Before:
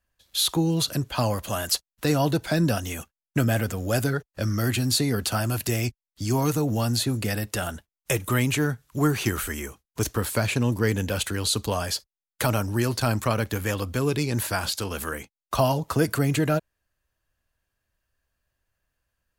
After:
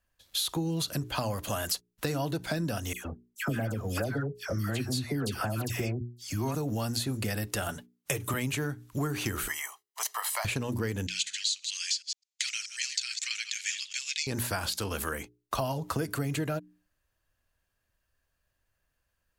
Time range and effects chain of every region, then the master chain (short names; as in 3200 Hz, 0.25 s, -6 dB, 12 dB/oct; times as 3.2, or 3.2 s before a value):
2.93–6.55 high shelf 3900 Hz -6.5 dB + dispersion lows, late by 0.121 s, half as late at 1300 Hz
7.68–8.34 HPF 72 Hz + comb 6.9 ms, depth 60%
9.48–10.45 steep high-pass 620 Hz + comb 1 ms
11.07–14.27 reverse delay 0.106 s, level -10.5 dB + elliptic band-pass 2100–7100 Hz, stop band 50 dB + tilt +3.5 dB/oct
whole clip: notches 60/120/180/240/300/360/420 Hz; compressor, threshold -28 dBFS